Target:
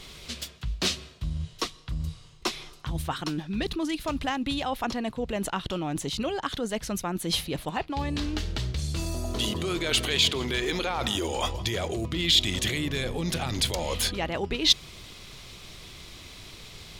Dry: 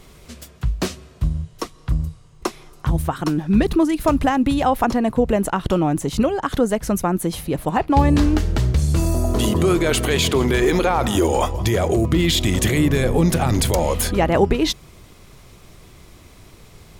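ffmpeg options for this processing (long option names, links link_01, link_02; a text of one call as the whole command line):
ffmpeg -i in.wav -af "areverse,acompressor=threshold=-25dB:ratio=6,areverse,equalizer=frequency=3700:width_type=o:width=1.7:gain=13.5,volume=-3dB" out.wav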